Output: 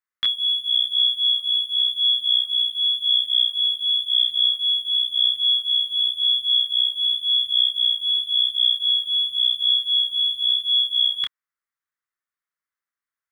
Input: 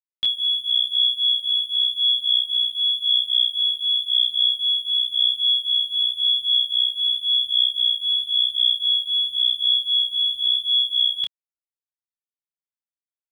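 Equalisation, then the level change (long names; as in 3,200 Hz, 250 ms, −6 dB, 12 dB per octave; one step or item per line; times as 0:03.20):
flat-topped bell 1,500 Hz +14 dB 1.2 octaves
0.0 dB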